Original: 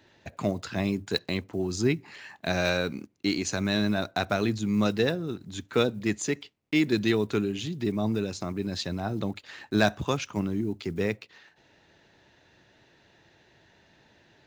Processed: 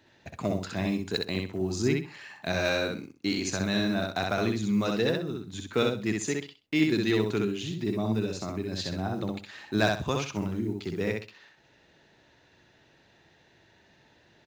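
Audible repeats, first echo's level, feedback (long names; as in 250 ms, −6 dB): 3, −3.0 dB, 24%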